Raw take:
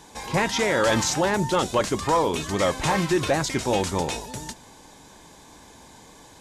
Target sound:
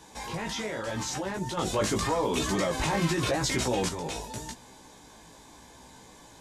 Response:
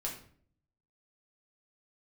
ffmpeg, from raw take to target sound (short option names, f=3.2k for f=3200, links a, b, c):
-filter_complex "[0:a]acrossover=split=410[a][b];[b]acompressor=threshold=-22dB:ratio=6[c];[a][c]amix=inputs=2:normalize=0,alimiter=limit=-21.5dB:level=0:latency=1:release=29,flanger=delay=15.5:depth=3.2:speed=0.84,asettb=1/sr,asplit=3[d][e][f];[d]atrim=end=1.574[g];[e]atrim=start=1.57:end=3.89,asetpts=PTS-STARTPTS,afade=t=in:d=0.004:c=qsin,afade=t=out:st=2.316:d=0.004:c=qsin,acontrast=54[h];[f]atrim=start=3.886[i];[g][h]acrossfade=d=0.004:c1=hsin:c2=qsin[j];[j][i]acrossfade=d=0.004:c1=qsin:c2=hsin"